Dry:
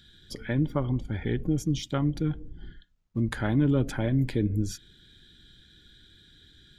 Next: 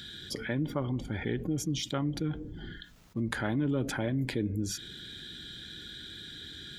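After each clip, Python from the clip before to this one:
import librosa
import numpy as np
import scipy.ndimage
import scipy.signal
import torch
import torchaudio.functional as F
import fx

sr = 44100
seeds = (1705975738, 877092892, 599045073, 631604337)

y = fx.highpass(x, sr, hz=170.0, slope=6)
y = fx.env_flatten(y, sr, amount_pct=50)
y = y * librosa.db_to_amplitude(-5.0)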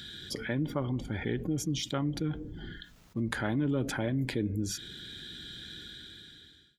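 y = fx.fade_out_tail(x, sr, length_s=1.05)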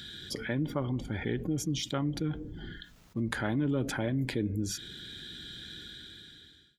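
y = x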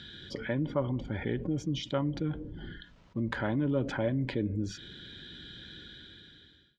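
y = fx.air_absorb(x, sr, metres=160.0)
y = fx.small_body(y, sr, hz=(560.0, 970.0, 3000.0), ring_ms=45, db=7)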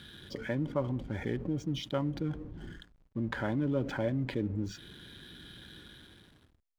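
y = fx.backlash(x, sr, play_db=-47.5)
y = y * librosa.db_to_amplitude(-1.5)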